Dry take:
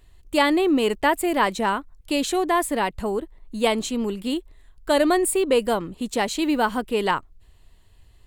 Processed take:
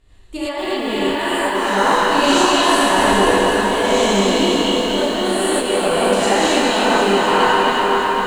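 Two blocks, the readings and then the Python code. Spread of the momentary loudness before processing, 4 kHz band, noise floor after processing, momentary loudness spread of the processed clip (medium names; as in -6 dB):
9 LU, +12.0 dB, -26 dBFS, 6 LU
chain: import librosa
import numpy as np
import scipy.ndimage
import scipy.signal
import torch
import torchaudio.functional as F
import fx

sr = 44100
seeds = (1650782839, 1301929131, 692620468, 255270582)

y = fx.spec_trails(x, sr, decay_s=2.82)
y = scipy.signal.sosfilt(scipy.signal.butter(2, 8500.0, 'lowpass', fs=sr, output='sos'), y)
y = fx.over_compress(y, sr, threshold_db=-19.0, ratio=-0.5)
y = fx.echo_stepped(y, sr, ms=274, hz=3300.0, octaves=-1.4, feedback_pct=70, wet_db=-0.5)
y = fx.rev_gated(y, sr, seeds[0], gate_ms=130, shape='rising', drr_db=-8.0)
y = fx.echo_crushed(y, sr, ms=252, feedback_pct=80, bits=6, wet_db=-7.5)
y = F.gain(torch.from_numpy(y), -7.0).numpy()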